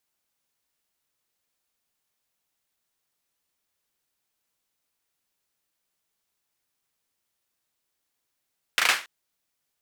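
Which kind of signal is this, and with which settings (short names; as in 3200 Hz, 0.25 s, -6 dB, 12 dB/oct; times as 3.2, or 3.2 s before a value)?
hand clap length 0.28 s, bursts 4, apart 36 ms, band 1800 Hz, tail 0.31 s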